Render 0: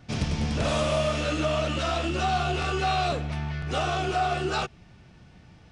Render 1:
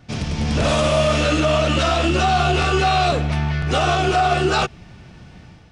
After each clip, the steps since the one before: limiter -18.5 dBFS, peak gain reduction 4 dB; AGC gain up to 7 dB; gain +3 dB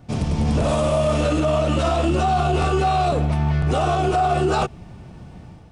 band shelf 3000 Hz -8.5 dB 2.5 oct; limiter -14 dBFS, peak gain reduction 5 dB; gain +2.5 dB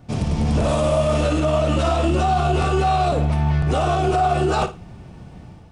flutter echo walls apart 9.5 m, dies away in 0.27 s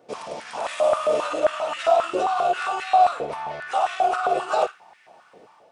stepped high-pass 7.5 Hz 460–1900 Hz; gain -5.5 dB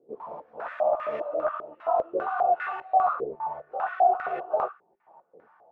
chorus voices 4, 1.2 Hz, delay 15 ms, depth 3.5 ms; stepped low-pass 5 Hz 400–1900 Hz; gain -7.5 dB

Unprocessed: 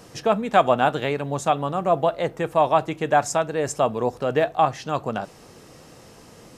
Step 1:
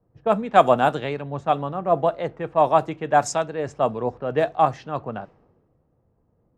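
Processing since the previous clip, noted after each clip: low-pass opened by the level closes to 790 Hz, open at -14 dBFS; dynamic EQ 2900 Hz, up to -4 dB, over -34 dBFS, Q 0.79; three-band expander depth 70%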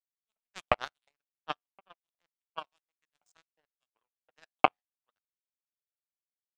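LFO high-pass saw up 2.8 Hz 730–4600 Hz; de-hum 91.11 Hz, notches 34; power-law curve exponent 3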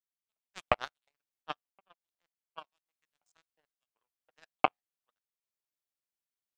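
random-step tremolo

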